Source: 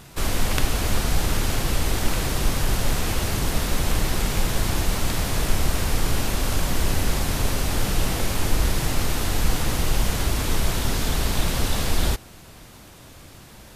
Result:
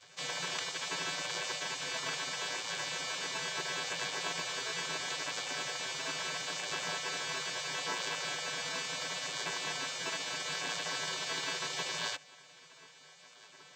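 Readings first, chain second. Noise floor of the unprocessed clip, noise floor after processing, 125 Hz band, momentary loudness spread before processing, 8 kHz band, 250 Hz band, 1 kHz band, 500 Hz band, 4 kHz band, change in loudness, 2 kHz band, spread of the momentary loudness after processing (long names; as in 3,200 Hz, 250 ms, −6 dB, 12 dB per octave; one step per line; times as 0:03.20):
−45 dBFS, −58 dBFS, −28.5 dB, 1 LU, −9.5 dB, −22.0 dB, −9.5 dB, −13.0 dB, −5.0 dB, −10.5 dB, −5.0 dB, 4 LU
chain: channel vocoder with a chord as carrier bare fifth, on A3
gate on every frequency bin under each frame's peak −20 dB weak
floating-point word with a short mantissa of 4 bits
level +4.5 dB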